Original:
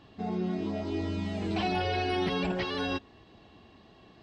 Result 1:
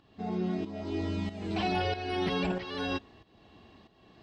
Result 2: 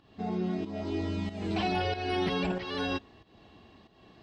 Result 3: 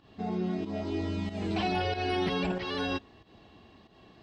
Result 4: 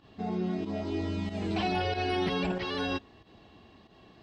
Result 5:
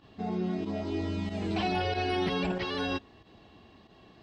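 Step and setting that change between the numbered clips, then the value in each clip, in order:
pump, release: 530, 291, 148, 96, 63 ms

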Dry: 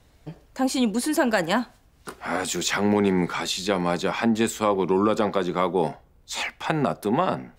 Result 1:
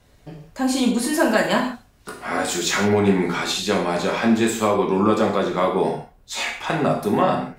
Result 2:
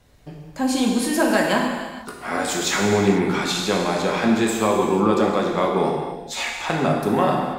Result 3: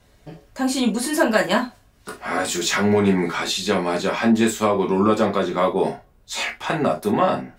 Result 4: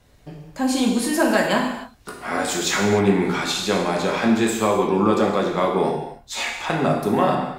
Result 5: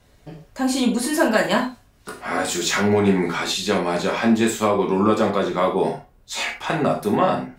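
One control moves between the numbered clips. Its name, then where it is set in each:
non-linear reverb, gate: 200, 520, 90, 330, 140 ms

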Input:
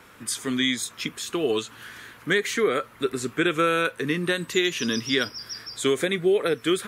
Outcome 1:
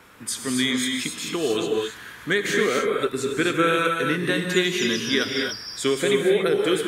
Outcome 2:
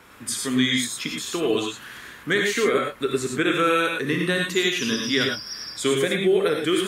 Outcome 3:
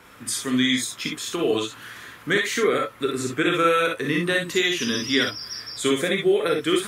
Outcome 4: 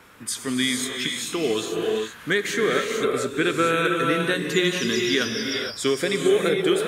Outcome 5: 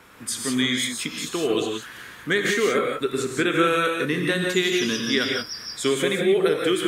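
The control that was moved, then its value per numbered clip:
non-linear reverb, gate: 300, 130, 80, 490, 200 ms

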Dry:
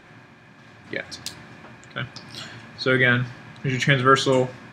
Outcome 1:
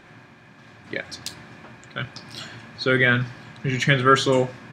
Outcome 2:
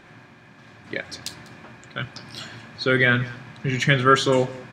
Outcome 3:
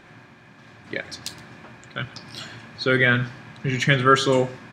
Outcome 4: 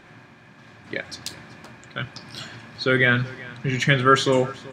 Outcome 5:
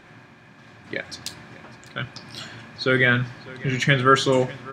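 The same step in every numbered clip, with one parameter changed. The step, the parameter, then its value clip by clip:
echo, time: 1.05, 0.197, 0.119, 0.38, 0.6 s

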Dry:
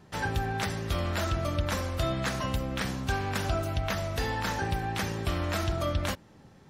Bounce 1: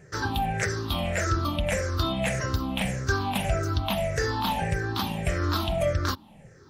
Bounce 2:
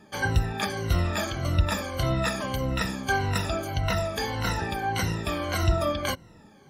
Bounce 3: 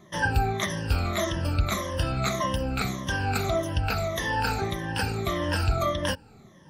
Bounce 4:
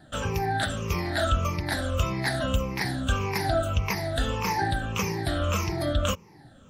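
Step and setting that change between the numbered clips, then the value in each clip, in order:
moving spectral ripple, ripples per octave: 0.52, 2, 1.2, 0.8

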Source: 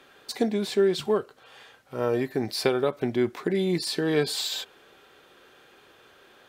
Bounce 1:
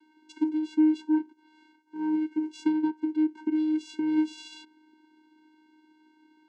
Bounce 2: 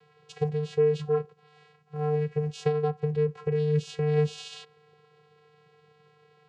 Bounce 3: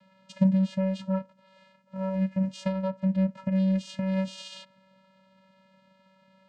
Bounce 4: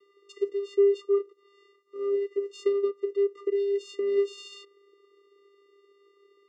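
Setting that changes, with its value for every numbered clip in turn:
vocoder, frequency: 310, 150, 190, 400 Hz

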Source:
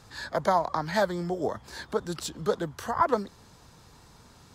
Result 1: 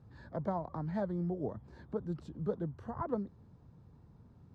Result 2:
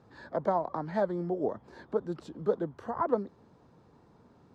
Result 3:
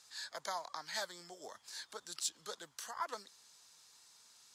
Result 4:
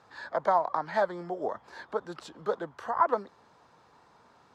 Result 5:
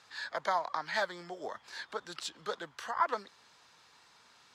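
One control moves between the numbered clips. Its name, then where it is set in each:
band-pass, frequency: 120, 330, 7400, 880, 2500 Hz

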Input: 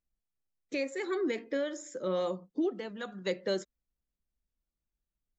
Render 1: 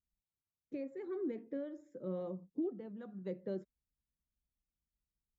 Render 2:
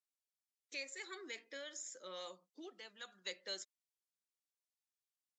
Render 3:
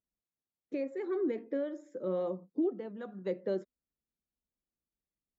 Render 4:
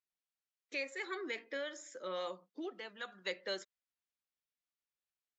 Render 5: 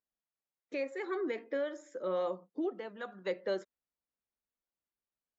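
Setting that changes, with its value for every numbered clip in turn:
band-pass, frequency: 100, 7000, 300, 2500, 890 Hz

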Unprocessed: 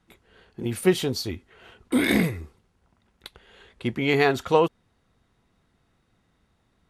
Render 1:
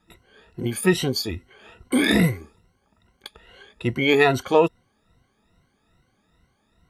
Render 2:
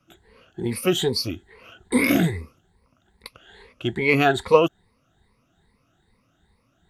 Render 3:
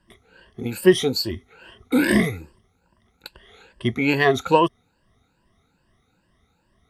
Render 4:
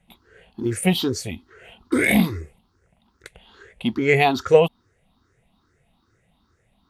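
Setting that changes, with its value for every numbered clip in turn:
moving spectral ripple, ripples per octave: 2, 0.91, 1.3, 0.5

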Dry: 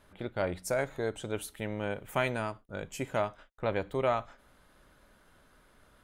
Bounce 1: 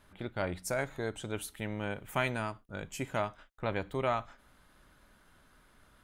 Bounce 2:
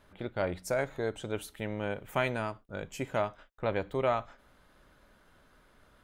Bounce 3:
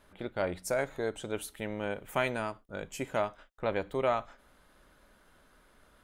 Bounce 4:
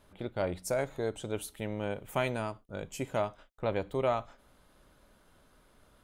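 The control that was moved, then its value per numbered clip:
bell, frequency: 510, 10000, 110, 1700 Hz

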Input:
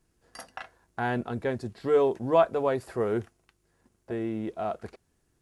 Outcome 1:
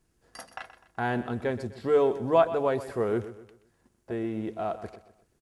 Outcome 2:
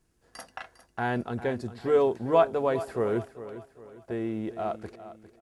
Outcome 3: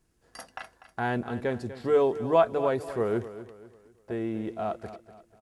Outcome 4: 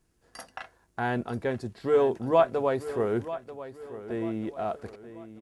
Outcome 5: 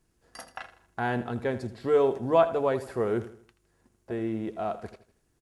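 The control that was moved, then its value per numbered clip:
feedback echo, time: 126, 403, 245, 938, 80 ms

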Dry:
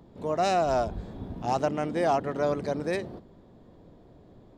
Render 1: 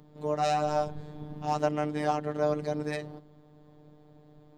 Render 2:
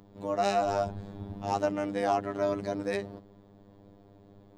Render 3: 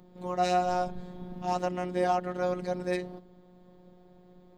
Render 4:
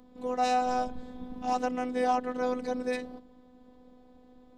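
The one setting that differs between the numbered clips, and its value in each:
robotiser, frequency: 150, 100, 180, 250 Hz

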